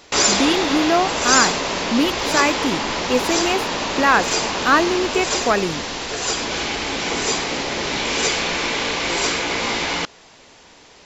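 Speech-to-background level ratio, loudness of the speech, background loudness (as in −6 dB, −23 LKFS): 0.0 dB, −20.5 LKFS, −20.5 LKFS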